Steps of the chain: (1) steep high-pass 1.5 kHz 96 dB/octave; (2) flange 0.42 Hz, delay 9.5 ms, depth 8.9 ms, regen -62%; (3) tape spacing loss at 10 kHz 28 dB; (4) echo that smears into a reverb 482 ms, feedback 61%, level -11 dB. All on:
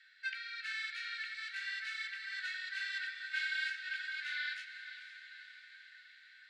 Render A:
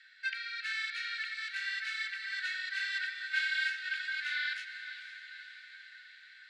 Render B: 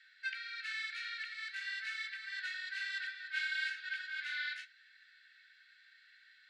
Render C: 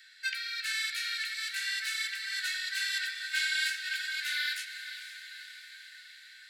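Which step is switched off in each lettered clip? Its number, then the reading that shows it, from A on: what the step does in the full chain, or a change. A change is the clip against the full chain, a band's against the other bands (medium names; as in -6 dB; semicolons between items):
2, loudness change +4.5 LU; 4, echo-to-direct -9.0 dB to none; 3, loudness change +7.0 LU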